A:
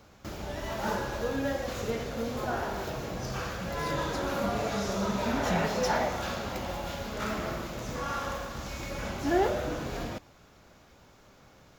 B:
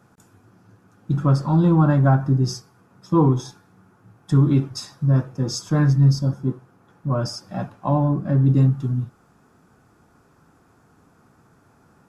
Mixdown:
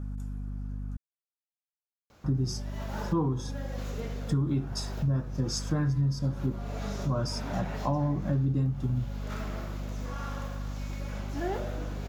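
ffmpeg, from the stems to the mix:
-filter_complex "[0:a]adelay=2100,volume=0.75[s0];[1:a]aeval=exprs='val(0)+0.0316*(sin(2*PI*50*n/s)+sin(2*PI*2*50*n/s)/2+sin(2*PI*3*50*n/s)/3+sin(2*PI*4*50*n/s)/4+sin(2*PI*5*50*n/s)/5)':c=same,volume=0.631,asplit=3[s1][s2][s3];[s1]atrim=end=0.97,asetpts=PTS-STARTPTS,afade=t=out:st=0.966:d=0.004:c=hsin[s4];[s2]atrim=start=0.97:end=2.24,asetpts=PTS-STARTPTS,volume=0[s5];[s3]atrim=start=2.24,asetpts=PTS-STARTPTS,afade=t=in:d=0.004:c=hsin[s6];[s4][s5][s6]concat=n=3:v=0:a=1,asplit=2[s7][s8];[s8]apad=whole_len=612219[s9];[s0][s9]sidechaincompress=threshold=0.0141:ratio=5:attack=6.7:release=390[s10];[s10][s7]amix=inputs=2:normalize=0,acompressor=threshold=0.0631:ratio=6"

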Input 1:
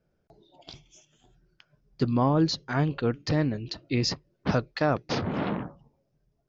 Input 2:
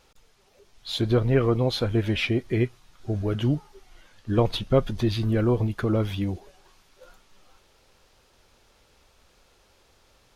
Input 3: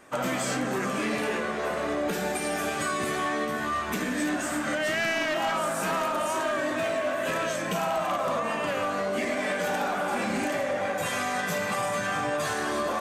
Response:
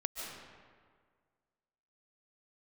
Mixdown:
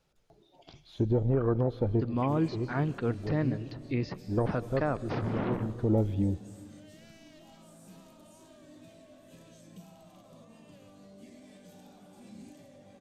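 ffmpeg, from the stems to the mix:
-filter_complex "[0:a]volume=0.562,asplit=3[s0][s1][s2];[s1]volume=0.112[s3];[1:a]afwtdn=0.0398,volume=1,asplit=2[s4][s5];[s5]volume=0.106[s6];[2:a]firequalizer=gain_entry='entry(160,0);entry(430,-12);entry(1400,-25);entry(3700,-8)':delay=0.05:min_phase=1,adelay=2050,volume=0.2[s7];[s2]apad=whole_len=456658[s8];[s4][s8]sidechaincompress=threshold=0.00631:ratio=8:attack=5.3:release=400[s9];[3:a]atrim=start_sample=2205[s10];[s3][s6]amix=inputs=2:normalize=0[s11];[s11][s10]afir=irnorm=-1:irlink=0[s12];[s0][s9][s7][s12]amix=inputs=4:normalize=0,acrossover=split=2600[s13][s14];[s14]acompressor=threshold=0.00158:ratio=4:attack=1:release=60[s15];[s13][s15]amix=inputs=2:normalize=0,alimiter=limit=0.126:level=0:latency=1:release=337"

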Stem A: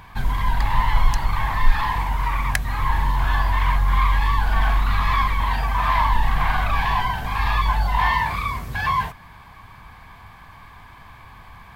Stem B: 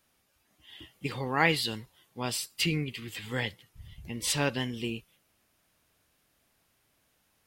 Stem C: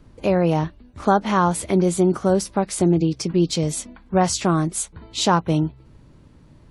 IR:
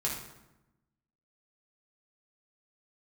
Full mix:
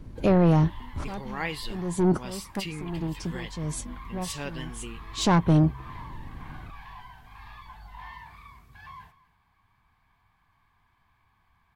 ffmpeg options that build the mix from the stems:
-filter_complex "[0:a]equalizer=f=550:w=4.9:g=-10,flanger=delay=6.3:depth=8.7:regen=-68:speed=0.29:shape=triangular,volume=0.106,asplit=2[s0][s1];[s1]volume=0.119[s2];[1:a]volume=0.422,asplit=2[s3][s4];[2:a]lowshelf=f=410:g=9,bandreject=f=1200:w=12,asoftclip=type=tanh:threshold=0.251,volume=0.794[s5];[s4]apad=whole_len=295564[s6];[s5][s6]sidechaincompress=threshold=0.00224:ratio=10:attack=6.1:release=315[s7];[s2]aecho=0:1:236:1[s8];[s0][s3][s7][s8]amix=inputs=4:normalize=0"

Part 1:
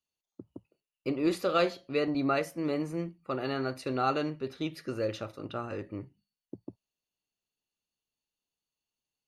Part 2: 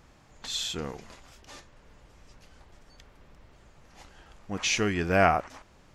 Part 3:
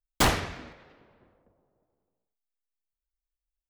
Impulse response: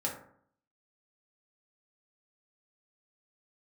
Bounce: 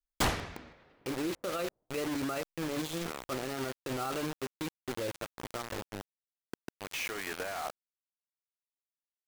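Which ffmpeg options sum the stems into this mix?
-filter_complex "[0:a]lowpass=4400,volume=0.708,asplit=2[s0][s1];[1:a]acrossover=split=380 2200:gain=0.112 1 0.178[s2][s3][s4];[s2][s3][s4]amix=inputs=3:normalize=0,alimiter=limit=0.1:level=0:latency=1,adynamicequalizer=threshold=0.00447:dfrequency=1500:dqfactor=0.7:tfrequency=1500:tqfactor=0.7:attack=5:release=100:ratio=0.375:range=2.5:mode=boostabove:tftype=highshelf,adelay=2300,volume=0.708[s5];[2:a]volume=0.473[s6];[s1]apad=whole_len=363438[s7];[s5][s7]sidechaincompress=threshold=0.02:ratio=8:attack=5.4:release=121[s8];[s0][s8]amix=inputs=2:normalize=0,acrusher=bits=5:mix=0:aa=0.000001,alimiter=level_in=1.41:limit=0.0631:level=0:latency=1:release=19,volume=0.708,volume=1[s9];[s6][s9]amix=inputs=2:normalize=0"

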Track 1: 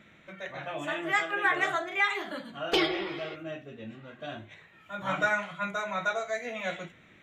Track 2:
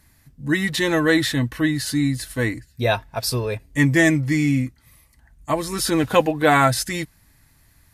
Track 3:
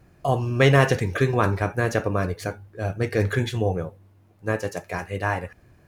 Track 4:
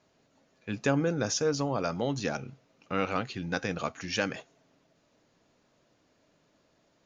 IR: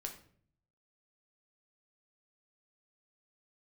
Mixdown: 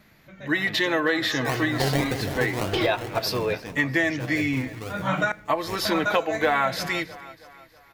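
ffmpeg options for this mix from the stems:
-filter_complex "[0:a]lowshelf=f=180:g=11.5,dynaudnorm=f=340:g=5:m=3.98,volume=0.473,asplit=3[s0][s1][s2];[s0]atrim=end=5.32,asetpts=PTS-STARTPTS,afade=t=out:st=5.316:d=0.004:c=hsin[s3];[s1]atrim=start=5.32:end=5.85,asetpts=PTS-STARTPTS,volume=0[s4];[s2]atrim=start=5.85,asetpts=PTS-STARTPTS,afade=t=in:d=0.004:c=hsin[s5];[s3][s4][s5]concat=n=3:v=0:a=1,asplit=2[s6][s7];[s7]volume=0.251[s8];[1:a]acrossover=split=370 5200:gain=0.2 1 0.0794[s9][s10][s11];[s9][s10][s11]amix=inputs=3:normalize=0,aexciter=amount=7.4:drive=4.7:freq=12000,volume=1.12,asplit=3[s12][s13][s14];[s13]volume=0.398[s15];[s14]volume=0.0944[s16];[2:a]acrusher=samples=29:mix=1:aa=0.000001:lfo=1:lforange=17.4:lforate=1.8,adelay=1200,volume=0.501,afade=t=out:st=2.39:d=0.66:silence=0.446684,asplit=2[s17][s18];[s18]volume=0.237[s19];[3:a]acompressor=threshold=0.0178:ratio=6,volume=1.06,asplit=2[s20][s21];[s21]apad=whole_len=318699[s22];[s6][s22]sidechaincompress=threshold=0.00251:ratio=8:attack=16:release=541[s23];[4:a]atrim=start_sample=2205[s24];[s8][s15]amix=inputs=2:normalize=0[s25];[s25][s24]afir=irnorm=-1:irlink=0[s26];[s16][s19]amix=inputs=2:normalize=0,aecho=0:1:322|644|966|1288|1610|1932:1|0.46|0.212|0.0973|0.0448|0.0206[s27];[s23][s12][s17][s20][s26][s27]amix=inputs=6:normalize=0,acompressor=threshold=0.112:ratio=6"

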